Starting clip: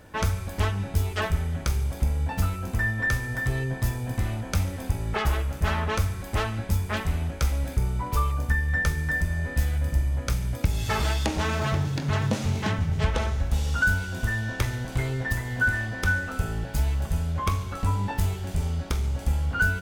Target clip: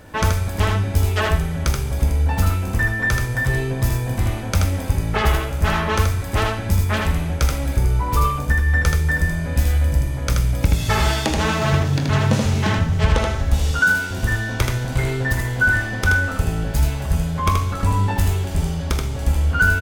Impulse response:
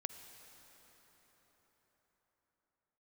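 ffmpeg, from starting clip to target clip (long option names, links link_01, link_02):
-filter_complex "[0:a]asettb=1/sr,asplit=3[link_01][link_02][link_03];[link_01]atrim=end=13.714[link_04];[link_02]atrim=start=13.71:end=14.11,asetpts=PTS-STARTPTS,afade=type=in:duration=0.004:curve=qsin,afade=type=out:start_time=0.396:duration=0.004:curve=qsin,highpass=190[link_05];[link_03]atrim=start=14.106[link_06];[link_04][link_05]acrossfade=duration=0.004:curve1=hsin:curve2=qsin[link_07];[link_07][link_06]acrossfade=duration=0.004:curve1=qsin:curve2=hsin,asplit=2[link_08][link_09];[link_09]aecho=0:1:79:0.668[link_10];[link_08][link_10]amix=inputs=2:normalize=0,volume=6dB"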